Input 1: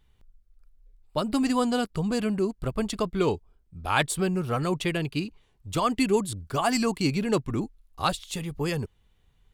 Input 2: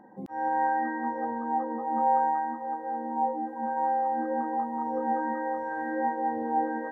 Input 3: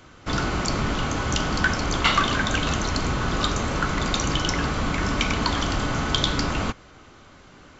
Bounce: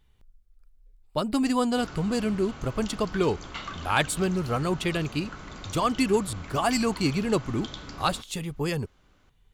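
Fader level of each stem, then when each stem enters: 0.0 dB, muted, −17.0 dB; 0.00 s, muted, 1.50 s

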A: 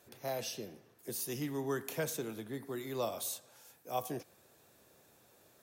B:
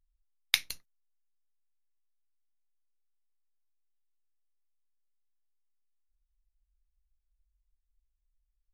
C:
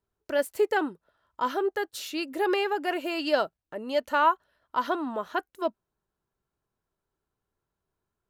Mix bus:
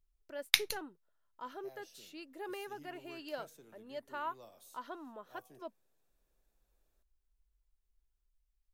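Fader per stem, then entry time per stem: −20.0, −0.5, −17.5 decibels; 1.40, 0.00, 0.00 seconds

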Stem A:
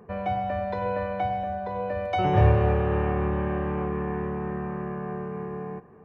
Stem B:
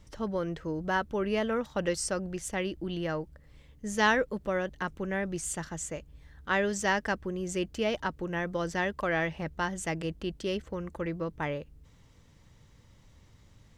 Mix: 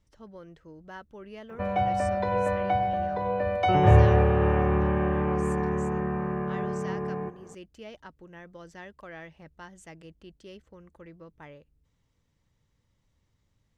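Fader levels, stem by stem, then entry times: +2.0, −14.5 decibels; 1.50, 0.00 seconds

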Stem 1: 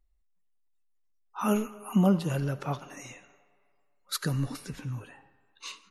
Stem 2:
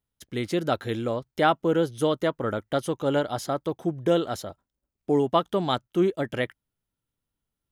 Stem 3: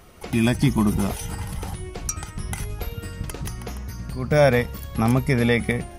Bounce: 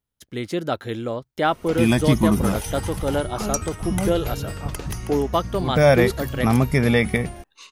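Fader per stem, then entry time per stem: −3.5, +0.5, +1.5 decibels; 1.95, 0.00, 1.45 seconds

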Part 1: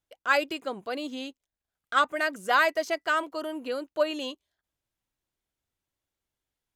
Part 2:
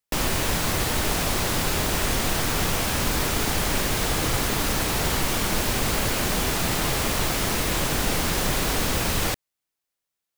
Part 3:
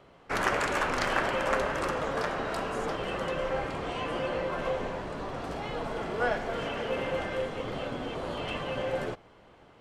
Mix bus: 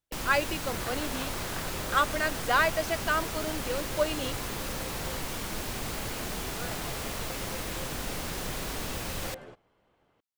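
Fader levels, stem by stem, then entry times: −2.0, −11.0, −13.5 decibels; 0.00, 0.00, 0.40 seconds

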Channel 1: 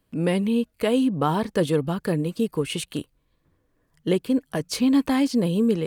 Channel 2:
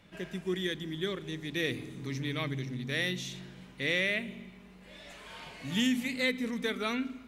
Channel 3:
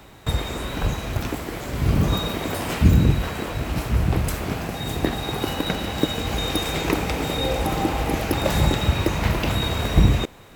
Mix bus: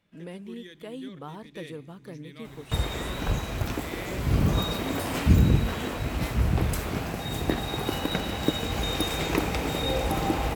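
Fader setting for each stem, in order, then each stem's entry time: −18.0, −13.0, −3.5 decibels; 0.00, 0.00, 2.45 seconds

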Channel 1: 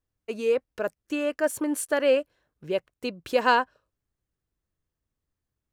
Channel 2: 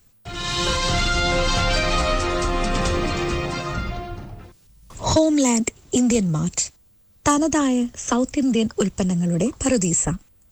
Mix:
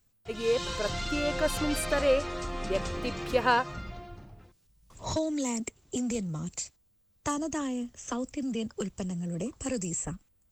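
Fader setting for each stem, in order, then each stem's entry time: −3.5, −13.0 decibels; 0.00, 0.00 seconds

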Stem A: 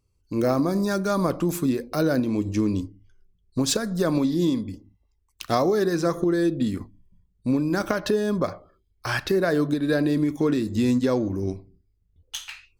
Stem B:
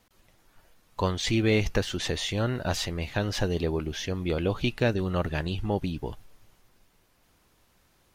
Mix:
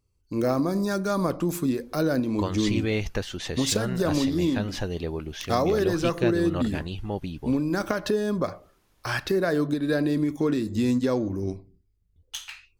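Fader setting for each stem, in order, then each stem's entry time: −2.0, −3.0 decibels; 0.00, 1.40 seconds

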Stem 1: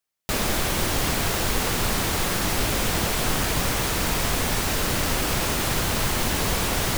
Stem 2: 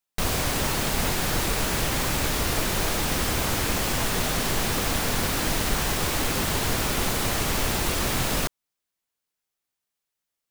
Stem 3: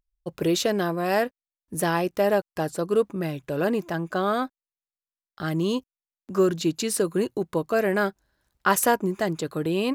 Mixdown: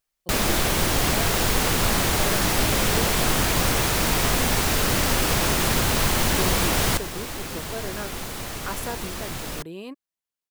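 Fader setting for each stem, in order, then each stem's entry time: +2.0, −7.5, −12.5 decibels; 0.00, 1.15, 0.00 seconds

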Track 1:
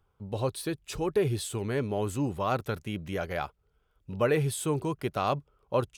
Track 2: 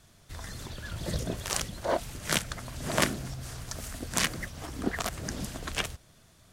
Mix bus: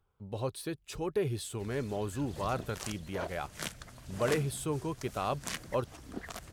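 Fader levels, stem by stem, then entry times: −5.0, −11.0 decibels; 0.00, 1.30 seconds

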